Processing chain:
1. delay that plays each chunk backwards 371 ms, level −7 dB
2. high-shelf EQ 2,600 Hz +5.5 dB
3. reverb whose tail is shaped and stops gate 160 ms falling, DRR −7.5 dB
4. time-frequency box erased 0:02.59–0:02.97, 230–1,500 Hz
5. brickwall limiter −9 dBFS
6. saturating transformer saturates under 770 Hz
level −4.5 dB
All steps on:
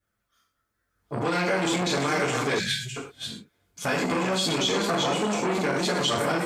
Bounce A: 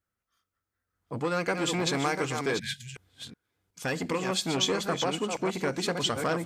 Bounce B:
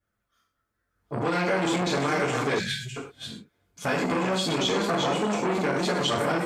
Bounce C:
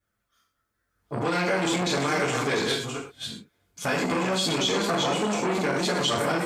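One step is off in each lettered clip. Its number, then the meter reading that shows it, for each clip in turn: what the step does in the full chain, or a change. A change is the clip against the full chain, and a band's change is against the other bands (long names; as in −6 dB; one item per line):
3, change in momentary loudness spread +3 LU
2, 8 kHz band −4.5 dB
4, change in momentary loudness spread −1 LU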